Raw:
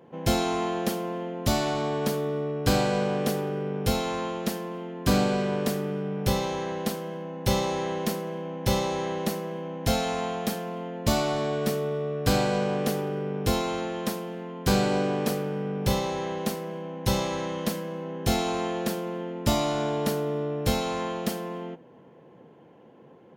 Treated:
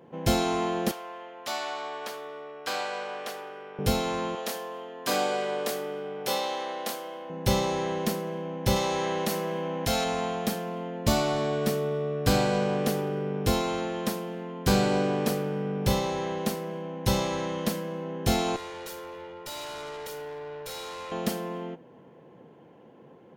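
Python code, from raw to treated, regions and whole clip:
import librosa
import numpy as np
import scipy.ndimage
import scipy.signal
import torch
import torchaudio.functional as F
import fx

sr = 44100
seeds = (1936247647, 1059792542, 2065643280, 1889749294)

y = fx.chain(x, sr, fx.highpass(hz=870.0, slope=12),
    fx.high_shelf(hz=5200.0, db=-10.5), at=(0.91, 3.79))
y = fx.chain(y, sr, fx.highpass(hz=500.0, slope=12),
    fx.doubler(ms=27.0, db=-6), at=(4.35, 7.3))
y = fx.chain(y, sr, fx.low_shelf(hz=480.0, db=-6.5),
    fx.env_flatten(amount_pct=50), at=(8.76, 10.04))
y = fx.chain(y, sr, fx.highpass(hz=830.0, slope=6),
    fx.comb(ms=2.1, depth=0.84),
    fx.tube_stage(drive_db=36.0, bias=0.65), at=(18.56, 21.12))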